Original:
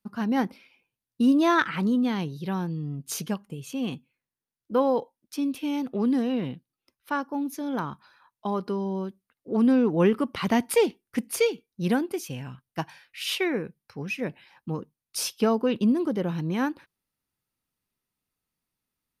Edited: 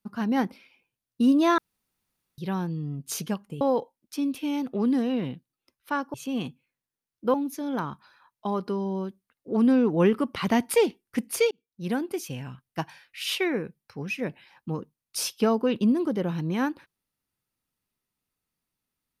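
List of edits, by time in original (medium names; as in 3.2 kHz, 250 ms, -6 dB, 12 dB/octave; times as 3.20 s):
1.58–2.38 s: room tone
3.61–4.81 s: move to 7.34 s
11.51–12.17 s: fade in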